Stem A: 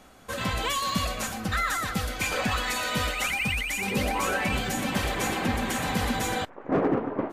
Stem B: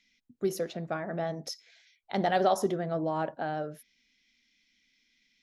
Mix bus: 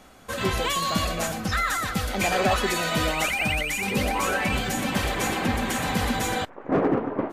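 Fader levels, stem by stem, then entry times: +2.0, 0.0 dB; 0.00, 0.00 s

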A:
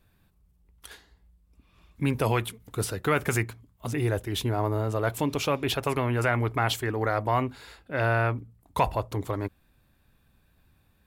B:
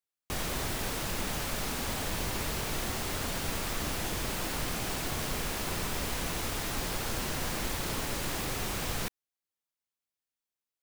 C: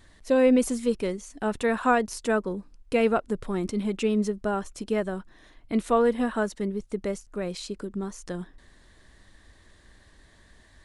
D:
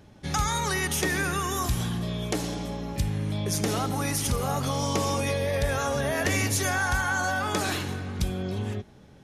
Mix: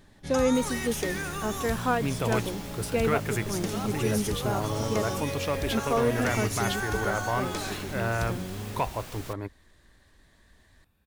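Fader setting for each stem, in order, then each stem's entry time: -4.5, -9.5, -4.5, -6.5 dB; 0.00, 0.25, 0.00, 0.00 s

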